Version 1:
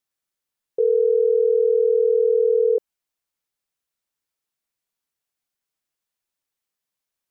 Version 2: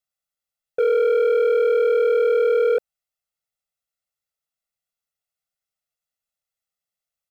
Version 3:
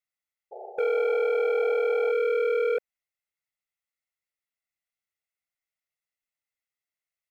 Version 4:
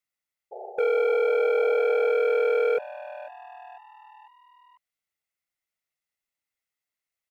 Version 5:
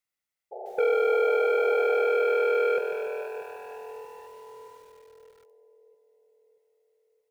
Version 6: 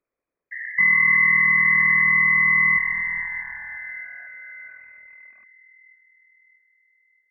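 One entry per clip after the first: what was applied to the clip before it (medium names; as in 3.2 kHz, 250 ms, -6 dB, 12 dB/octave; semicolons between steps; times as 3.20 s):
comb 1.5 ms, depth 91%; waveshaping leveller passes 2; trim -3 dB
peaking EQ 2.1 kHz +11.5 dB 0.58 oct; painted sound noise, 0.51–2.12 s, 370–870 Hz -34 dBFS; trim -7 dB
frequency-shifting echo 497 ms, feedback 52%, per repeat +130 Hz, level -17.5 dB; trim +2 dB
two-band feedback delay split 540 Hz, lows 632 ms, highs 247 ms, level -13 dB; bit-crushed delay 145 ms, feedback 55%, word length 9-bit, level -6 dB
resonances exaggerated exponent 1.5; frequency inversion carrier 2.5 kHz; trim +6 dB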